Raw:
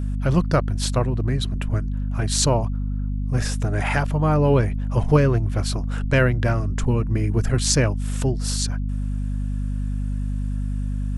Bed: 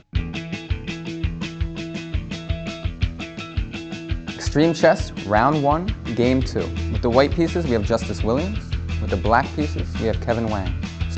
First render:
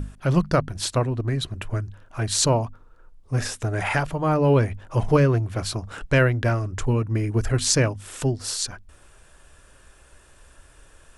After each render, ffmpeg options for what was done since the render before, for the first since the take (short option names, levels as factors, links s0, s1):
-af "bandreject=f=50:t=h:w=6,bandreject=f=100:t=h:w=6,bandreject=f=150:t=h:w=6,bandreject=f=200:t=h:w=6,bandreject=f=250:t=h:w=6"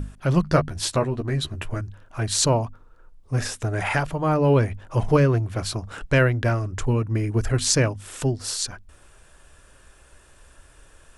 -filter_complex "[0:a]asettb=1/sr,asplit=3[s0][s1][s2];[s0]atrim=end=0.454[s3];[s1]atrim=start=0.45:end=1.81,asetpts=PTS-STARTPTS,afade=t=in:d=0.004:c=qsin,afade=t=out:st=1.356:d=0.004:c=qsin,asplit=2[s4][s5];[s5]adelay=13,volume=0.562[s6];[s4][s6]amix=inputs=2:normalize=0,atrim=end_sample=59976[s7];[s2]atrim=start=1.806[s8];[s3][s7]acrossfade=d=0.004:c1=hsin:c2=qsin[s9];[s9][s8]acrossfade=d=0.004:c1=qsin:c2=hsin"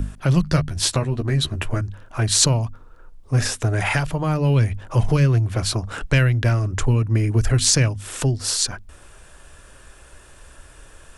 -filter_complex "[0:a]acrossover=split=170|2200[s0][s1][s2];[s1]acompressor=threshold=0.0316:ratio=6[s3];[s0][s3][s2]amix=inputs=3:normalize=0,alimiter=level_in=2:limit=0.891:release=50:level=0:latency=1"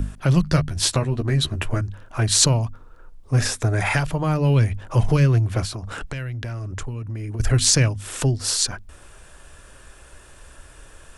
-filter_complex "[0:a]asettb=1/sr,asplit=3[s0][s1][s2];[s0]atrim=end=3.524[s3];[s1]atrim=start=3.52:end=3.93,asetpts=PTS-STARTPTS,afade=t=in:d=0.004:c=qsin,afade=t=out:st=0.406:d=0.004:c=qsin,bandreject=f=2900:w=7.1[s4];[s2]atrim=start=3.926[s5];[s3][s4]acrossfade=d=0.004:c1=hsin:c2=qsin[s6];[s6][s5]acrossfade=d=0.004:c1=qsin:c2=hsin,asettb=1/sr,asplit=3[s7][s8][s9];[s7]atrim=end=5.654[s10];[s8]atrim=start=5.65:end=7.4,asetpts=PTS-STARTPTS,afade=t=in:d=0.004:c=qsin,afade=t=out:st=1.746:d=0.004:c=qsin,acompressor=threshold=0.0447:ratio=6:attack=3.2:release=140:knee=1:detection=peak[s11];[s9]atrim=start=7.396[s12];[s10][s11]acrossfade=d=0.004:c1=hsin:c2=qsin[s13];[s13][s12]acrossfade=d=0.004:c1=qsin:c2=hsin"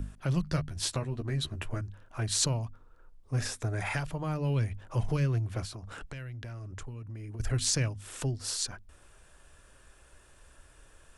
-af "volume=0.266"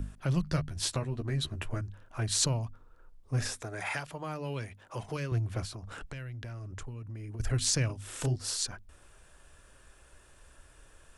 -filter_complex "[0:a]asettb=1/sr,asplit=3[s0][s1][s2];[s0]atrim=end=3.624[s3];[s1]atrim=start=3.62:end=5.32,asetpts=PTS-STARTPTS,afade=t=in:d=0.004:c=qsin,afade=t=out:st=1.696:d=0.004:c=qsin,highpass=f=410:p=1[s4];[s2]atrim=start=5.316[s5];[s3][s4]acrossfade=d=0.004:c1=hsin:c2=qsin[s6];[s6][s5]acrossfade=d=0.004:c1=qsin:c2=hsin,asettb=1/sr,asplit=3[s7][s8][s9];[s7]atrim=end=7.864[s10];[s8]atrim=start=7.86:end=8.36,asetpts=PTS-STARTPTS,afade=t=in:d=0.004:c=qsin,afade=t=out:st=0.496:d=0.004:c=qsin,asplit=2[s11][s12];[s12]adelay=32,volume=0.631[s13];[s11][s13]amix=inputs=2:normalize=0,atrim=end_sample=22050[s14];[s9]atrim=start=8.356[s15];[s10][s14]acrossfade=d=0.004:c1=hsin:c2=qsin[s16];[s16][s15]acrossfade=d=0.004:c1=qsin:c2=hsin"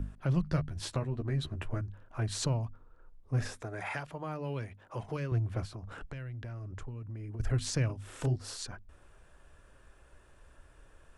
-af "highshelf=f=3000:g=-11.5"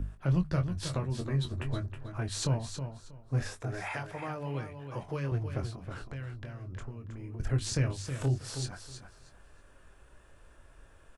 -filter_complex "[0:a]asplit=2[s0][s1];[s1]adelay=22,volume=0.398[s2];[s0][s2]amix=inputs=2:normalize=0,asplit=2[s3][s4];[s4]aecho=0:1:319|638|957:0.376|0.0752|0.015[s5];[s3][s5]amix=inputs=2:normalize=0"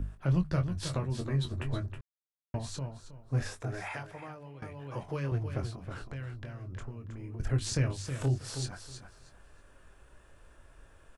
-filter_complex "[0:a]asplit=4[s0][s1][s2][s3];[s0]atrim=end=2.01,asetpts=PTS-STARTPTS,afade=t=out:st=2.006:d=0.004:c=hsin[s4];[s1]atrim=start=2.01:end=2.54,asetpts=PTS-STARTPTS,volume=0[s5];[s2]atrim=start=2.54:end=4.62,asetpts=PTS-STARTPTS,afade=t=in:d=0.004:c=hsin,afade=t=out:st=1.11:d=0.97:silence=0.149624[s6];[s3]atrim=start=4.62,asetpts=PTS-STARTPTS,afade=t=in:d=0.004:c=hsin:silence=0.149624[s7];[s4][s5][s6][s7]concat=n=4:v=0:a=1"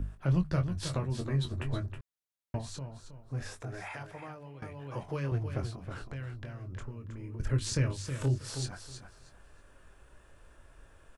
-filter_complex "[0:a]asettb=1/sr,asplit=3[s0][s1][s2];[s0]atrim=end=2.614[s3];[s1]atrim=start=2.61:end=4.01,asetpts=PTS-STARTPTS,afade=t=in:d=0.004:c=qsin,afade=t=out:st=1.396:d=0.004:c=qsin,acompressor=threshold=0.00794:ratio=1.5:attack=3.2:release=140:knee=1:detection=peak[s4];[s2]atrim=start=4.006[s5];[s3][s4]acrossfade=d=0.004:c1=hsin:c2=qsin[s6];[s6][s5]acrossfade=d=0.004:c1=qsin:c2=hsin,asettb=1/sr,asplit=3[s7][s8][s9];[s7]atrim=end=6.824[s10];[s8]atrim=start=6.82:end=8.49,asetpts=PTS-STARTPTS,afade=t=in:d=0.004:c=qsin,afade=t=out:st=1.666:d=0.004:c=qsin,asuperstop=centerf=730:order=4:qfactor=4.9[s11];[s9]atrim=start=8.486[s12];[s10][s11]acrossfade=d=0.004:c1=hsin:c2=qsin[s13];[s13][s12]acrossfade=d=0.004:c1=qsin:c2=hsin"